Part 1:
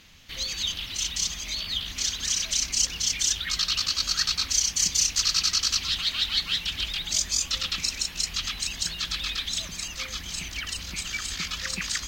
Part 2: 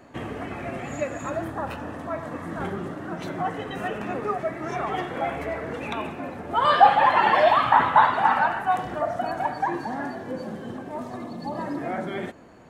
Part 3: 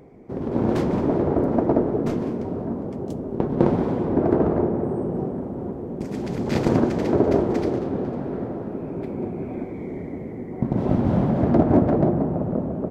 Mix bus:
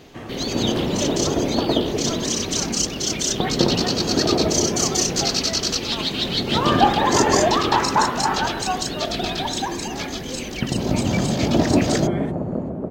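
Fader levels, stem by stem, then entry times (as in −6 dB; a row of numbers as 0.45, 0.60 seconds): +1.0, −2.5, −1.0 decibels; 0.00, 0.00, 0.00 seconds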